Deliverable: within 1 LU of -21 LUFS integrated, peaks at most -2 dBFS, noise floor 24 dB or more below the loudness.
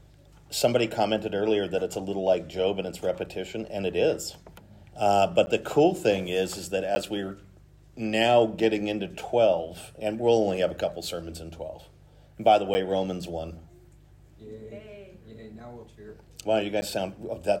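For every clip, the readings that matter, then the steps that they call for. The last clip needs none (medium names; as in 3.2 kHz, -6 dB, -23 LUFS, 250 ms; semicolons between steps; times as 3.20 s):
dropouts 4; longest dropout 10 ms; hum 50 Hz; highest harmonic 150 Hz; hum level -52 dBFS; loudness -26.5 LUFS; peak level -8.0 dBFS; loudness target -21.0 LUFS
-> interpolate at 5.46/6.95/12.74/16.81 s, 10 ms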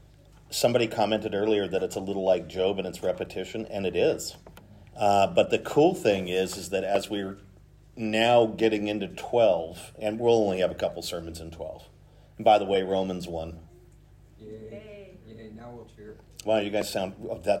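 dropouts 0; hum 50 Hz; highest harmonic 150 Hz; hum level -52 dBFS
-> de-hum 50 Hz, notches 3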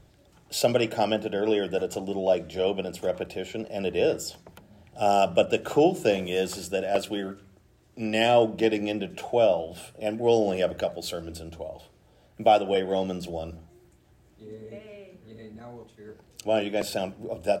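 hum not found; loudness -26.0 LUFS; peak level -8.0 dBFS; loudness target -21.0 LUFS
-> trim +5 dB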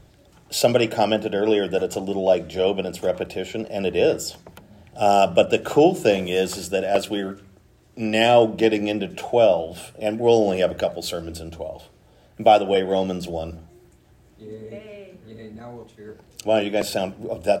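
loudness -21.0 LUFS; peak level -3.0 dBFS; noise floor -54 dBFS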